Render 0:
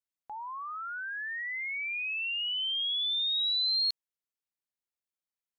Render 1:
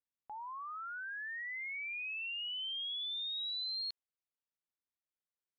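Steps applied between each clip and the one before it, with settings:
high-frequency loss of the air 210 metres
level −4 dB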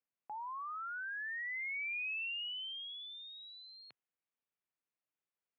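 elliptic band-pass filter 120–2,700 Hz
level +2 dB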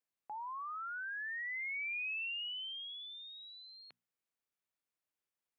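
mains-hum notches 60/120/180/240 Hz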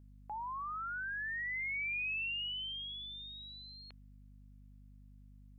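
mains hum 50 Hz, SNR 15 dB
level +2 dB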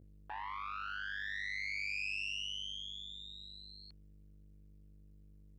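saturating transformer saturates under 1,500 Hz
level +4 dB

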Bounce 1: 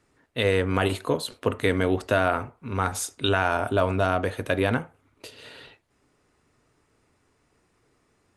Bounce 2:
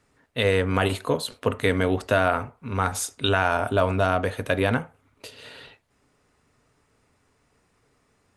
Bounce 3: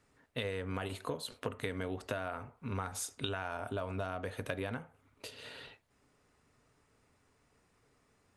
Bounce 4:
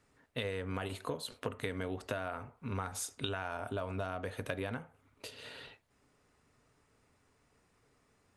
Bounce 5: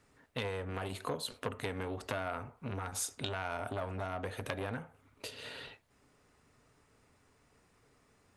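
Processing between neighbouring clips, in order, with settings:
parametric band 340 Hz −8.5 dB 0.21 octaves; level +1.5 dB
downward compressor 8 to 1, threshold −29 dBFS, peak gain reduction 13.5 dB; level −5 dB
no processing that can be heard
saturating transformer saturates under 1,600 Hz; level +3 dB

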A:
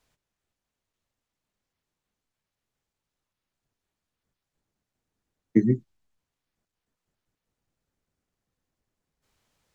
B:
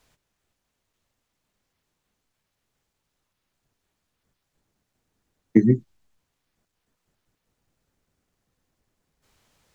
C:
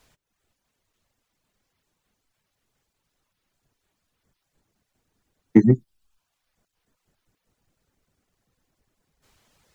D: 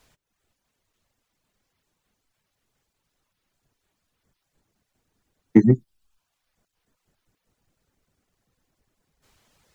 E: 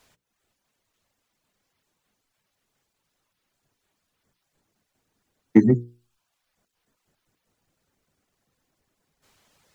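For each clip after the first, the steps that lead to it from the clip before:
downward compressor 1.5 to 1, threshold −25 dBFS, peak gain reduction 4.5 dB; level +7.5 dB
reverb reduction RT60 0.76 s; in parallel at −5.5 dB: soft clipping −13.5 dBFS, distortion −10 dB
no processing that can be heard
low-shelf EQ 81 Hz −9.5 dB; mains-hum notches 60/120/180/240/300/360/420/480 Hz; level +1 dB

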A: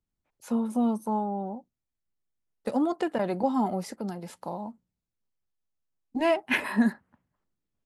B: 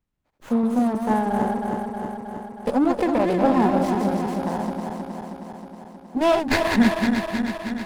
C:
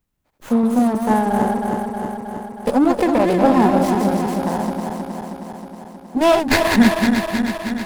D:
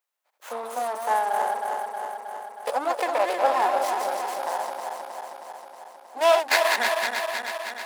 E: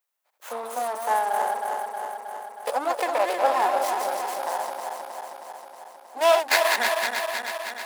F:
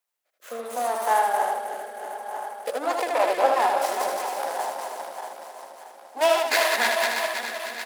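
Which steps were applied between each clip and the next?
feedback delay that plays each chunk backwards 158 ms, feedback 81%, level −5 dB; windowed peak hold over 9 samples; level +6 dB
high-shelf EQ 7,600 Hz +8 dB; level +4.5 dB
high-pass filter 580 Hz 24 dB per octave; level −2.5 dB
high-shelf EQ 9,900 Hz +5.5 dB
rotating-speaker cabinet horn 0.7 Hz, later 5 Hz, at 0:02.37; single-tap delay 78 ms −4.5 dB; level +2.5 dB

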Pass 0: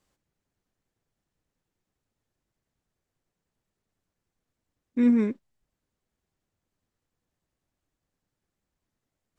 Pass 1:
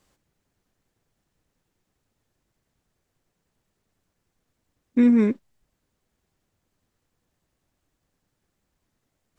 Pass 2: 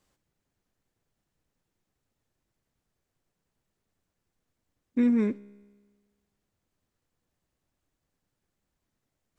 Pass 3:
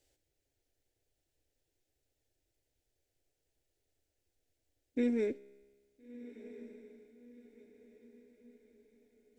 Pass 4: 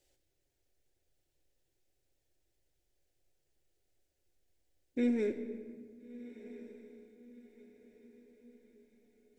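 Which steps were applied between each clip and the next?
downward compressor, threshold −21 dBFS, peak gain reduction 5 dB; level +7.5 dB
tuned comb filter 68 Hz, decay 1.5 s, harmonics all, mix 40%; level −2 dB
phaser with its sweep stopped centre 460 Hz, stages 4; feedback delay with all-pass diffusion 1,376 ms, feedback 42%, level −15 dB
rectangular room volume 3,200 cubic metres, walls mixed, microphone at 0.98 metres

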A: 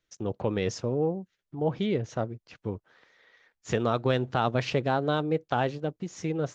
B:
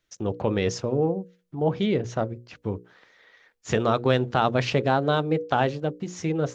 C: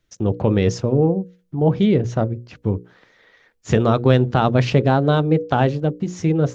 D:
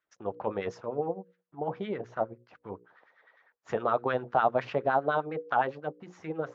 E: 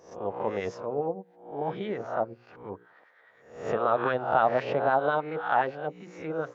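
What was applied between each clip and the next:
mains-hum notches 60/120/180/240/300/360/420/480/540 Hz; level +4.5 dB
low-shelf EQ 350 Hz +10 dB; level +1.5 dB
auto-filter band-pass sine 9.8 Hz 710–1,600 Hz; level −1.5 dB
peak hold with a rise ahead of every peak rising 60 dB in 0.54 s

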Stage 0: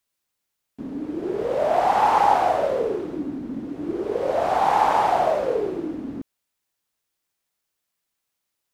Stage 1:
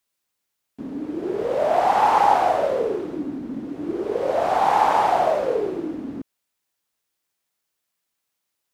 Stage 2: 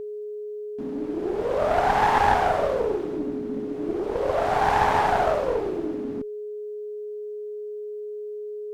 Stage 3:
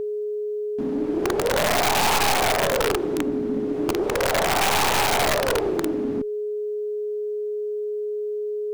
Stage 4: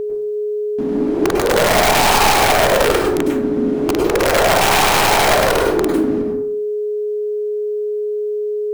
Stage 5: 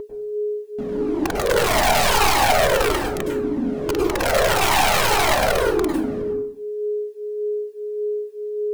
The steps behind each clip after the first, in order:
low-shelf EQ 93 Hz −6 dB; level +1 dB
one-sided soft clipper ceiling −23 dBFS; steady tone 420 Hz −31 dBFS
in parallel at +1 dB: downward compressor 12 to 1, threshold −29 dBFS, peak gain reduction 15 dB; on the sum: wrap-around overflow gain 14.5 dB
dense smooth reverb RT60 0.61 s, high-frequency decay 0.5×, pre-delay 90 ms, DRR 1 dB; level +5 dB
flanger whose copies keep moving one way falling 1.7 Hz

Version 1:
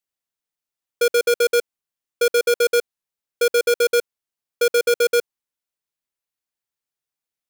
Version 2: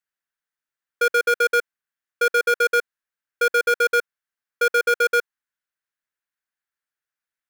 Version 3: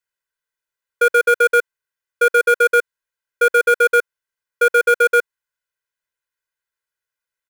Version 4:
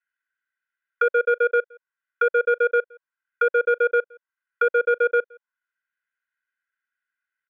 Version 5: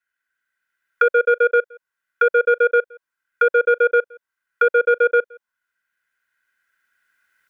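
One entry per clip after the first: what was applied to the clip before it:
parametric band 1,600 Hz +14.5 dB 0.93 octaves; level −6 dB
comb filter 2 ms, depth 97%
envelope filter 540–1,500 Hz, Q 2.5, down, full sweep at −16.5 dBFS; flat-topped bell 2,200 Hz +9.5 dB; slap from a distant wall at 29 metres, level −27 dB; level −2 dB
camcorder AGC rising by 7.3 dB per second; level +4 dB

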